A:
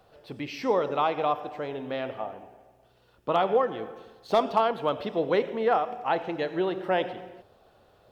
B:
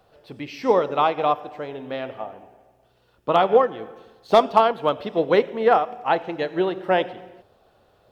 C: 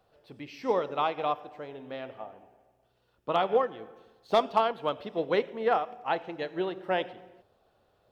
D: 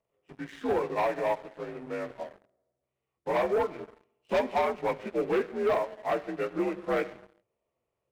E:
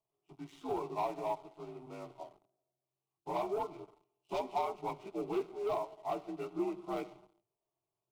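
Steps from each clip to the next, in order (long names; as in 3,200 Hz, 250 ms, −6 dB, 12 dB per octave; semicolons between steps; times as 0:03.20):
expander for the loud parts 1.5 to 1, over −34 dBFS; level +8 dB
dynamic equaliser 3,100 Hz, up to +3 dB, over −33 dBFS, Q 0.71; level −9 dB
partials spread apart or drawn together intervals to 86%; leveller curve on the samples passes 3; level −6.5 dB
phaser with its sweep stopped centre 340 Hz, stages 8; level −5 dB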